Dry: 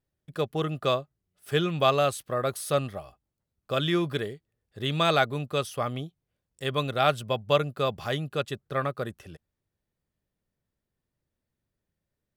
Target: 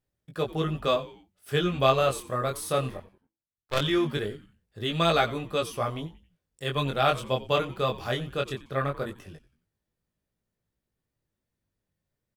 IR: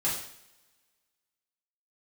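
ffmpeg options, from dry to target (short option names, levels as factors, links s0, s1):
-filter_complex "[0:a]asettb=1/sr,asplit=3[s0][s1][s2];[s0]atrim=end=2.974[s3];[s1]atrim=start=2.97:end=3.81,asetpts=PTS-STARTPTS,afade=t=in:d=0.004:c=qsin,afade=t=out:st=0.836:d=0.004:c=qsin,aeval=exprs='0.211*(cos(1*acos(clip(val(0)/0.211,-1,1)))-cos(1*PI/2))+0.0668*(cos(2*acos(clip(val(0)/0.211,-1,1)))-cos(2*PI/2))+0.0335*(cos(7*acos(clip(val(0)/0.211,-1,1)))-cos(7*PI/2))':c=same[s4];[s2]atrim=start=3.806[s5];[s3][s4]acrossfade=d=0.004:c1=hsin:c2=qsin[s6];[s6][s5]acrossfade=d=0.004:c1=qsin:c2=hsin,flanger=delay=17.5:depth=6.2:speed=0.19,asplit=4[s7][s8][s9][s10];[s8]adelay=90,afreqshift=-110,volume=0.133[s11];[s9]adelay=180,afreqshift=-220,volume=0.0531[s12];[s10]adelay=270,afreqshift=-330,volume=0.0214[s13];[s7][s11][s12][s13]amix=inputs=4:normalize=0,volume=1.41"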